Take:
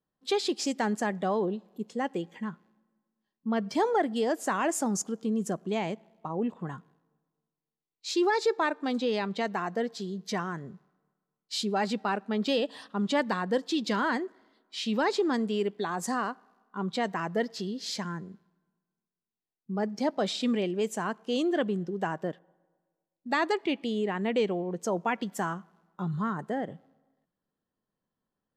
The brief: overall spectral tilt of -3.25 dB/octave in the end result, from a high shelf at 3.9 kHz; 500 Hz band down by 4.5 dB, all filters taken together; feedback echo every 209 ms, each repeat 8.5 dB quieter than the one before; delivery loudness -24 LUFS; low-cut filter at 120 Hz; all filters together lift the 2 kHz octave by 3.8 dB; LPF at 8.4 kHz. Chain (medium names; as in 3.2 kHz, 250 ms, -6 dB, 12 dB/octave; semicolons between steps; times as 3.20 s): high-pass 120 Hz; low-pass 8.4 kHz; peaking EQ 500 Hz -6 dB; peaking EQ 2 kHz +3.5 dB; treble shelf 3.9 kHz +7.5 dB; feedback delay 209 ms, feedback 38%, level -8.5 dB; trim +6.5 dB